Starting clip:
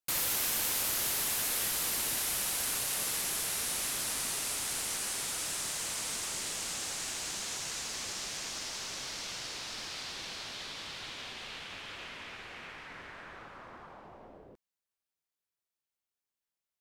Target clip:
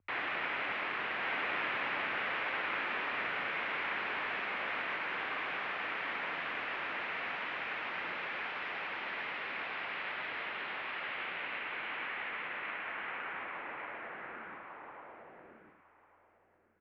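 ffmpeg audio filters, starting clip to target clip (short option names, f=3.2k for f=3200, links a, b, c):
-filter_complex "[0:a]equalizer=f=330:w=0.34:g=-10.5,asplit=2[a][b];[b]adelay=105,volume=-7dB,highshelf=f=4k:g=-2.36[c];[a][c]amix=inputs=2:normalize=0,aeval=exprs='val(0)+0.000891*(sin(2*PI*60*n/s)+sin(2*PI*2*60*n/s)/2+sin(2*PI*3*60*n/s)/3+sin(2*PI*4*60*n/s)/4+sin(2*PI*5*60*n/s)/5)':c=same,asplit=2[d][e];[e]aecho=0:1:1148|2296|3444:0.668|0.107|0.0171[f];[d][f]amix=inputs=2:normalize=0,highpass=f=420:t=q:w=0.5412,highpass=f=420:t=q:w=1.307,lowpass=f=2.6k:t=q:w=0.5176,lowpass=f=2.6k:t=q:w=0.7071,lowpass=f=2.6k:t=q:w=1.932,afreqshift=-210,volume=8.5dB"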